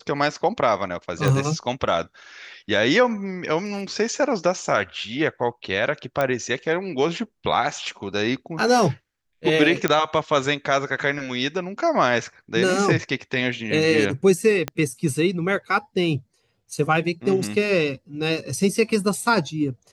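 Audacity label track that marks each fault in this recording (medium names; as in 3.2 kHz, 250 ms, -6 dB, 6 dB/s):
1.280000	1.280000	pop -9 dBFS
6.210000	6.210000	pop -10 dBFS
9.880000	9.880000	pop -6 dBFS
14.680000	14.680000	pop -11 dBFS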